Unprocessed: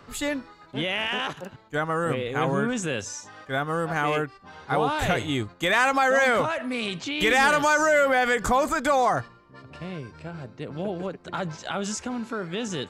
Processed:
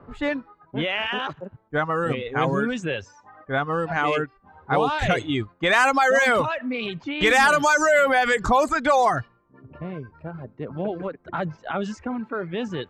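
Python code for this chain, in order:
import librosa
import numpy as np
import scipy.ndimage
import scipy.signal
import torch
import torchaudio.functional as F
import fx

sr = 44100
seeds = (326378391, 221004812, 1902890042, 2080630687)

y = fx.env_lowpass(x, sr, base_hz=940.0, full_db=-16.5)
y = fx.dereverb_blind(y, sr, rt60_s=1.1)
y = F.gain(torch.from_numpy(y), 3.5).numpy()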